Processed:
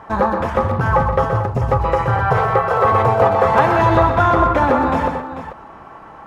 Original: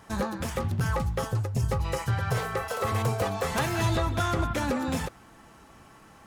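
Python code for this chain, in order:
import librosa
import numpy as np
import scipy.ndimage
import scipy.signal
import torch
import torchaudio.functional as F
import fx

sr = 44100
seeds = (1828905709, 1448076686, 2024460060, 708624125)

p1 = fx.curve_eq(x, sr, hz=(210.0, 960.0, 8500.0), db=(0, 11, -19))
p2 = p1 + fx.echo_multitap(p1, sr, ms=(125, 167, 442), db=(-7.5, -14.0, -11.5), dry=0)
y = p2 * 10.0 ** (7.0 / 20.0)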